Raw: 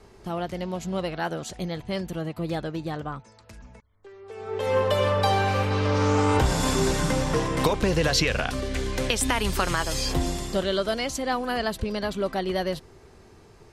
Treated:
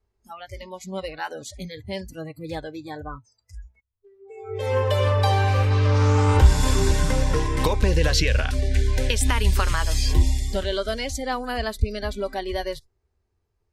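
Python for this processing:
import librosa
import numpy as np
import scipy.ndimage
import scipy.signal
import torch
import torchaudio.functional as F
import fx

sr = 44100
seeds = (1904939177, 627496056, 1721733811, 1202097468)

y = fx.noise_reduce_blind(x, sr, reduce_db=28)
y = fx.low_shelf_res(y, sr, hz=110.0, db=9.5, q=1.5)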